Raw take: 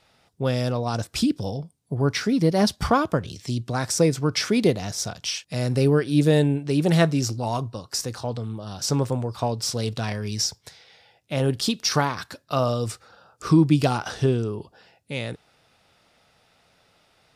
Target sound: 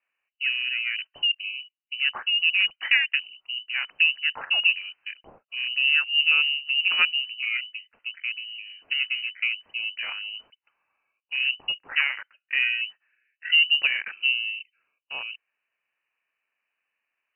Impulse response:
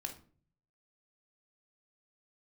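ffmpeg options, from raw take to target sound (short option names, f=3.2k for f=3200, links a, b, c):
-filter_complex "[0:a]afwtdn=0.0251,acrossover=split=220 2200:gain=0.224 1 0.2[a][b][c];[a][b][c]amix=inputs=3:normalize=0,lowpass=f=2.6k:t=q:w=0.5098,lowpass=f=2.6k:t=q:w=0.6013,lowpass=f=2.6k:t=q:w=0.9,lowpass=f=2.6k:t=q:w=2.563,afreqshift=-3100"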